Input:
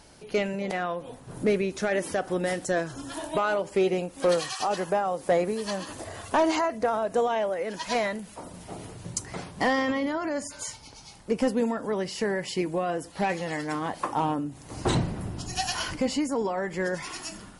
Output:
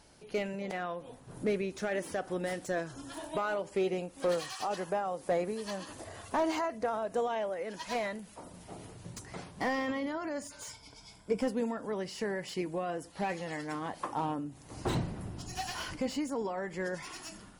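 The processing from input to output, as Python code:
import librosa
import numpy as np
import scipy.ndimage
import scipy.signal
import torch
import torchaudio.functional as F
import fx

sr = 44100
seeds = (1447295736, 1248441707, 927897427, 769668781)

y = fx.ripple_eq(x, sr, per_octave=1.7, db=10, at=(10.69, 11.41))
y = fx.slew_limit(y, sr, full_power_hz=120.0)
y = y * librosa.db_to_amplitude(-7.0)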